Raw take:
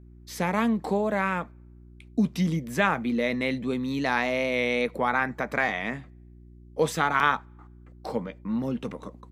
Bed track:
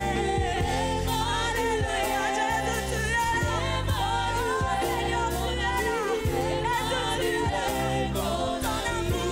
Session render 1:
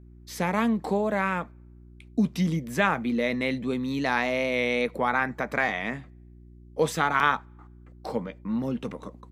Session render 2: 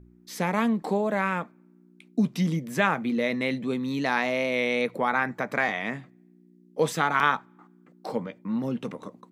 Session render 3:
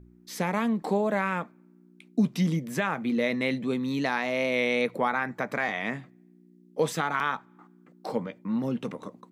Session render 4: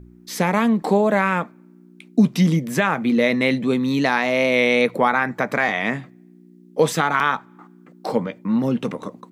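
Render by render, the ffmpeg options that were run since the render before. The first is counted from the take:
ffmpeg -i in.wav -af anull out.wav
ffmpeg -i in.wav -af "bandreject=frequency=60:width_type=h:width=4,bandreject=frequency=120:width_type=h:width=4" out.wav
ffmpeg -i in.wav -af "alimiter=limit=-14dB:level=0:latency=1:release=266" out.wav
ffmpeg -i in.wav -af "volume=8.5dB" out.wav

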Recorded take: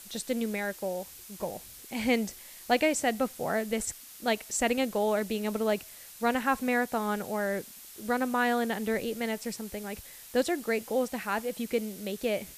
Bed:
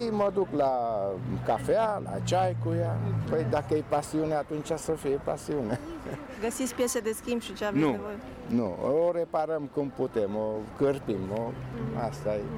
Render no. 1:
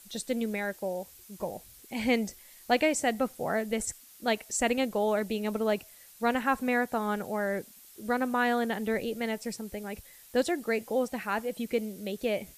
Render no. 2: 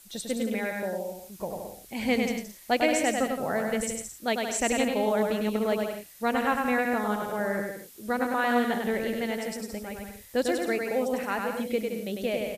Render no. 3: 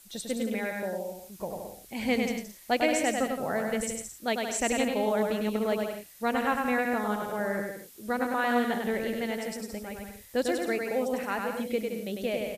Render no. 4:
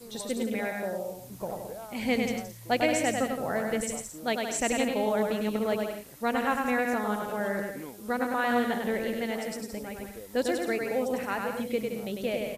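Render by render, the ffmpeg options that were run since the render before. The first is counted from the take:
ffmpeg -i in.wav -af "afftdn=noise_reduction=7:noise_floor=-48" out.wav
ffmpeg -i in.wav -af "aecho=1:1:100|170|219|253.3|277.3:0.631|0.398|0.251|0.158|0.1" out.wav
ffmpeg -i in.wav -af "volume=-1.5dB" out.wav
ffmpeg -i in.wav -i bed.wav -filter_complex "[1:a]volume=-17dB[link_01];[0:a][link_01]amix=inputs=2:normalize=0" out.wav

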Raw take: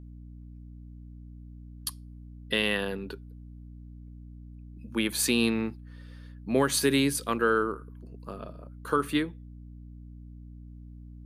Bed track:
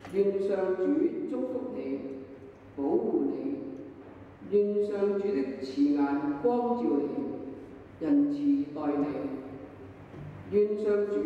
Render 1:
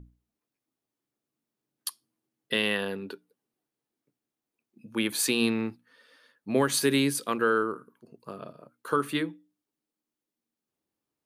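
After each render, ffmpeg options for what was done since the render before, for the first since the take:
ffmpeg -i in.wav -af "bandreject=frequency=60:width_type=h:width=6,bandreject=frequency=120:width_type=h:width=6,bandreject=frequency=180:width_type=h:width=6,bandreject=frequency=240:width_type=h:width=6,bandreject=frequency=300:width_type=h:width=6" out.wav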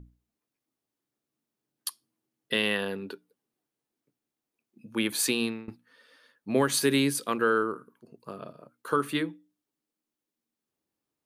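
ffmpeg -i in.wav -filter_complex "[0:a]asplit=2[link_01][link_02];[link_01]atrim=end=5.68,asetpts=PTS-STARTPTS,afade=type=out:start_time=5.28:duration=0.4:silence=0.0794328[link_03];[link_02]atrim=start=5.68,asetpts=PTS-STARTPTS,afade=type=in:duration=0.004:curve=hsin:silence=0.0794328[link_04];[link_03][link_04]concat=n=2:v=0:a=1" out.wav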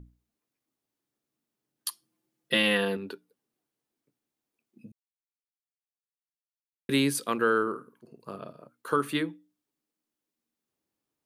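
ffmpeg -i in.wav -filter_complex "[0:a]asettb=1/sr,asplit=3[link_01][link_02][link_03];[link_01]atrim=end=1.884[link_04];[link_02]atrim=start=1.88:end=2.97,asetpts=PTS-STARTPTS,afade=type=in:duration=0.004:curve=qsin,afade=type=out:start_time=1.086:duration=0.004:curve=qsin,aecho=1:1:5.8:0.97,atrim=end_sample=48069[link_05];[link_03]atrim=start=2.966[link_06];[link_04][link_05]acrossfade=duration=0.004:curve1=hsin:curve2=qsin[link_07];[link_07][link_06]acrossfade=duration=0.004:curve1=qsin:curve2=hsin,asettb=1/sr,asplit=3[link_08][link_09][link_10];[link_08]atrim=end=7.624[link_11];[link_09]atrim=start=7.62:end=8.36,asetpts=PTS-STARTPTS,afade=type=in:duration=0.004:curve=qsin,afade=type=out:start_time=0.736:duration=0.004:curve=qsin,asplit=2[link_12][link_13];[link_13]adelay=50,volume=-10dB[link_14];[link_12][link_14]amix=inputs=2:normalize=0,atrim=end_sample=32634[link_15];[link_10]atrim=start=8.356[link_16];[link_11][link_15]acrossfade=duration=0.004:curve1=hsin:curve2=qsin[link_17];[link_17][link_16]acrossfade=duration=0.004:curve1=qsin:curve2=hsin,asplit=3[link_18][link_19][link_20];[link_18]atrim=end=4.92,asetpts=PTS-STARTPTS,afade=type=out:start_time=4.916:duration=0.004:curve=hsin[link_21];[link_19]atrim=start=4.92:end=6.89,asetpts=PTS-STARTPTS,volume=0[link_22];[link_20]atrim=start=6.89,asetpts=PTS-STARTPTS,afade=type=in:duration=0.004:curve=hsin[link_23];[link_21][link_22][link_23]concat=n=3:v=0:a=1" out.wav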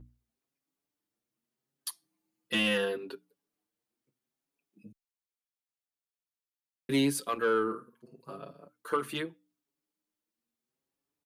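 ffmpeg -i in.wav -filter_complex "[0:a]asoftclip=type=tanh:threshold=-15.5dB,asplit=2[link_01][link_02];[link_02]adelay=6.1,afreqshift=0.77[link_03];[link_01][link_03]amix=inputs=2:normalize=1" out.wav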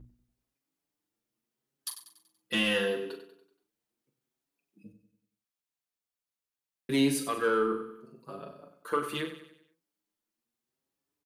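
ffmpeg -i in.wav -filter_complex "[0:a]asplit=2[link_01][link_02];[link_02]adelay=41,volume=-8.5dB[link_03];[link_01][link_03]amix=inputs=2:normalize=0,aecho=1:1:95|190|285|380|475:0.266|0.122|0.0563|0.0259|0.0119" out.wav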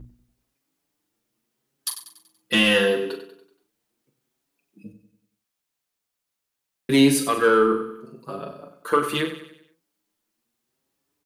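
ffmpeg -i in.wav -af "volume=9.5dB" out.wav

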